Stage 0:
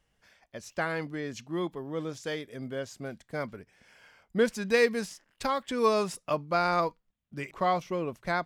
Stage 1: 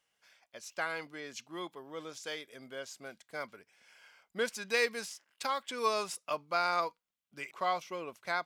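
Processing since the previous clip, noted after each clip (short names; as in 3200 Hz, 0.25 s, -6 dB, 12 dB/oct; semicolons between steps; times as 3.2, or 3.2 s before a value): HPF 1200 Hz 6 dB/oct; notch 1800 Hz, Q 12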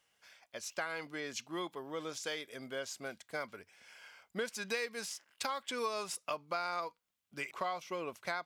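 bell 91 Hz +7 dB 0.3 oct; compressor 4:1, threshold -39 dBFS, peak gain reduction 13 dB; gain +4 dB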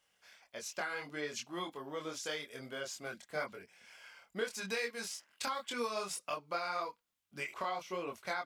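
chorus voices 4, 1.1 Hz, delay 24 ms, depth 3 ms; gain +3 dB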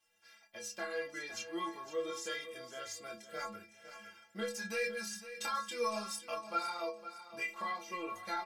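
metallic resonator 100 Hz, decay 0.59 s, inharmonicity 0.03; feedback echo 0.509 s, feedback 34%, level -12.5 dB; reverb, pre-delay 5 ms, DRR 12.5 dB; gain +12 dB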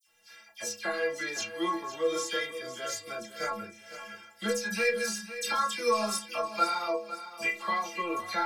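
dispersion lows, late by 73 ms, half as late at 2400 Hz; gain +8.5 dB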